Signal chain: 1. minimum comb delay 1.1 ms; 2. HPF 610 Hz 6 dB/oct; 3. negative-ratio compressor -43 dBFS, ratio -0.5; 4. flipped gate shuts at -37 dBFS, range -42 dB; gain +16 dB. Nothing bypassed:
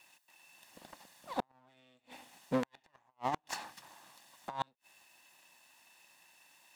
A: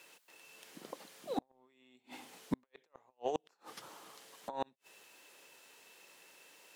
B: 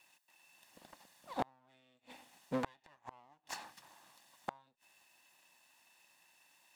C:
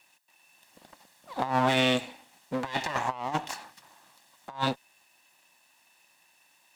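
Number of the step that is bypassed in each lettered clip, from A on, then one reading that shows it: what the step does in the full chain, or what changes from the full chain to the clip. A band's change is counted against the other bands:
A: 1, 500 Hz band +3.5 dB; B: 3, crest factor change +6.0 dB; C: 4, momentary loudness spread change -4 LU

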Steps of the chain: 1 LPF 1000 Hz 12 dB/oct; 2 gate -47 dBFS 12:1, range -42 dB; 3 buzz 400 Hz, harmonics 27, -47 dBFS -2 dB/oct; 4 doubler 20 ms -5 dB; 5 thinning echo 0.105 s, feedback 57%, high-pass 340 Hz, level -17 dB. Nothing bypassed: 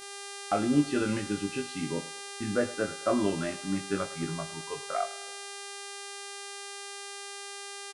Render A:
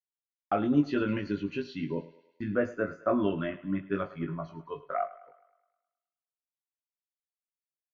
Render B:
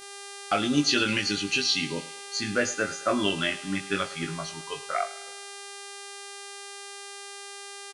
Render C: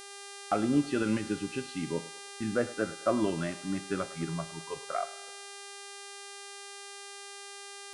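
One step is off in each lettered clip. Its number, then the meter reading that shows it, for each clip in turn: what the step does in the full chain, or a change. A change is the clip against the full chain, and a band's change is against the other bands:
3, 4 kHz band -12.5 dB; 1, 4 kHz band +9.0 dB; 4, 8 kHz band -2.5 dB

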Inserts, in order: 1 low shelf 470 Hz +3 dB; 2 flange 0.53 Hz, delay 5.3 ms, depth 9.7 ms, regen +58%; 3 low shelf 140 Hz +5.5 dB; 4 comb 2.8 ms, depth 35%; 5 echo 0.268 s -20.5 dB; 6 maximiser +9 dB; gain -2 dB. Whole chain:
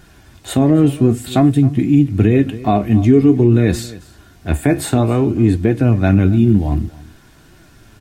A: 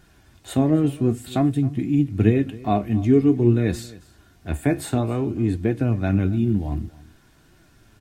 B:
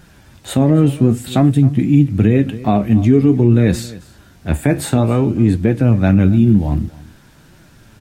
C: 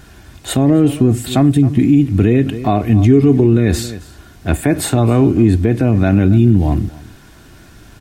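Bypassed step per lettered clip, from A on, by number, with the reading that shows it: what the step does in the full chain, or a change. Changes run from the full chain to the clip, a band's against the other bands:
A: 6, crest factor change +6.5 dB; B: 4, 125 Hz band +1.5 dB; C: 2, 8 kHz band +3.0 dB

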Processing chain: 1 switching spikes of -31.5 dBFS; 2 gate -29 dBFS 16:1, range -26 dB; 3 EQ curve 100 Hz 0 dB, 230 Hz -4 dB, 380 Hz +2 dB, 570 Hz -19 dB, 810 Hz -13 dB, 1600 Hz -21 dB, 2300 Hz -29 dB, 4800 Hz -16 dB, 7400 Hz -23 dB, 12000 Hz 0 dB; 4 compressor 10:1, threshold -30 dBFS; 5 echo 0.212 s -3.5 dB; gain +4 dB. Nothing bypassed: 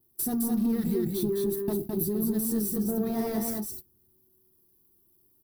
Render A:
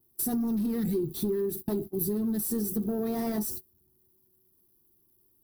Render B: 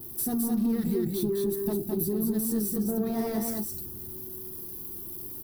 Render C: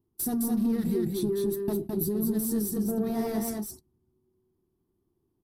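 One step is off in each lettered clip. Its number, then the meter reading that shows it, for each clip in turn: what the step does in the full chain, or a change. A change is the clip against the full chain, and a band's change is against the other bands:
5, loudness change -1.5 LU; 2, momentary loudness spread change +6 LU; 1, distortion -17 dB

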